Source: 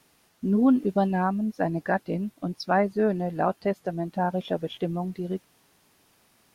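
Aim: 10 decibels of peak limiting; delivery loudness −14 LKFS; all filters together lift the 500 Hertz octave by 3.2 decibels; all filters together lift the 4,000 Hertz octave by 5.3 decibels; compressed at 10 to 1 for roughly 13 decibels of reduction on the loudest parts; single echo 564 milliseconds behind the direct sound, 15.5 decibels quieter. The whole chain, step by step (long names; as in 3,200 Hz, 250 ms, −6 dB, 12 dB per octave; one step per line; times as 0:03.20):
parametric band 500 Hz +4 dB
parametric band 4,000 Hz +7 dB
downward compressor 10 to 1, threshold −28 dBFS
brickwall limiter −27 dBFS
single-tap delay 564 ms −15.5 dB
level +22.5 dB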